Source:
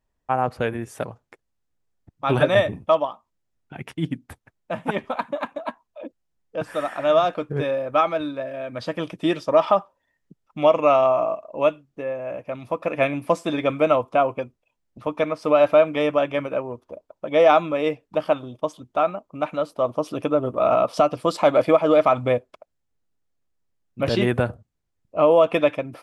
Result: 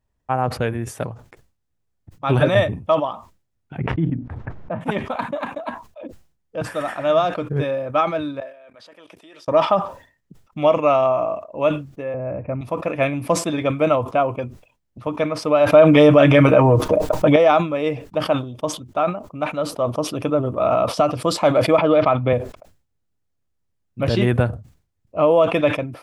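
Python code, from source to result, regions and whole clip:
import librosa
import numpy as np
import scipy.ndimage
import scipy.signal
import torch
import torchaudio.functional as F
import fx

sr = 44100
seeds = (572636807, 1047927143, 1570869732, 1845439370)

y = fx.chain(x, sr, fx.lowpass(hz=1400.0, slope=12),
    fx.pre_swell(db_per_s=29.0), at=(3.78, 4.81))
y = fx.chain(y, sr, fx.highpass(hz=510.0, slope=12),
    fx.level_steps(step_db=23), at=(8.4, 9.48))
y = fx.chain(y, sr, fx.steep_lowpass(hz=2600.0, slope=72),
    fx.tilt_eq(slope=-3.0), at=(12.14, 12.61))
y = fx.chain(y, sr, fx.comb(ms=6.5, depth=0.54),
    fx.env_flatten(amount_pct=70), at=(15.72, 17.36))
y = fx.chain(y, sr, fx.lowpass(hz=4200.0, slope=24),
    fx.band_squash(depth_pct=40), at=(21.78, 22.33))
y = fx.peak_eq(y, sr, hz=90.0, db=8.0, octaves=1.8)
y = fx.sustainer(y, sr, db_per_s=130.0)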